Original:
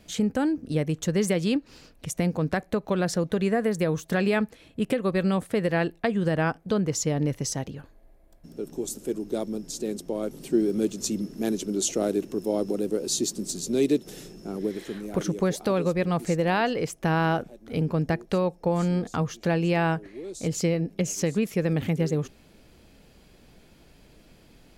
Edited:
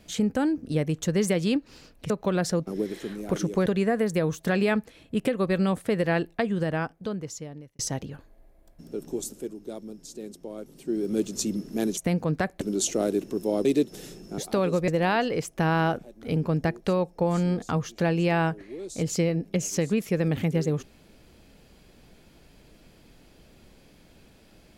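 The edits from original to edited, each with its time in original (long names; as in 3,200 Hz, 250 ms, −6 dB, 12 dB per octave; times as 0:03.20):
0:02.10–0:02.74: move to 0:11.62
0:05.92–0:07.44: fade out
0:08.82–0:10.88: duck −8.5 dB, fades 0.38 s
0:12.66–0:13.79: remove
0:14.52–0:15.51: move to 0:03.31
0:16.01–0:16.33: remove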